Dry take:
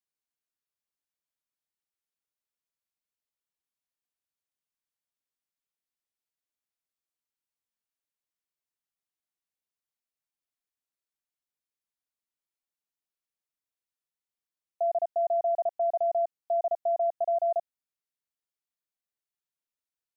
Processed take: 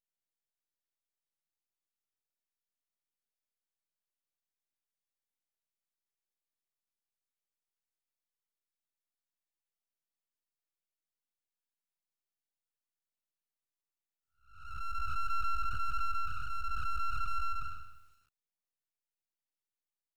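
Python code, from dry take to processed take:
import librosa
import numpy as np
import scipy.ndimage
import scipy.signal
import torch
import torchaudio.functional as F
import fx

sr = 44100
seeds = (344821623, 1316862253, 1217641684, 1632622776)

y = fx.spec_blur(x, sr, span_ms=390.0)
y = np.abs(y)
y = fx.echo_crushed(y, sr, ms=153, feedback_pct=35, bits=10, wet_db=-12.0)
y = y * librosa.db_to_amplitude(-1.0)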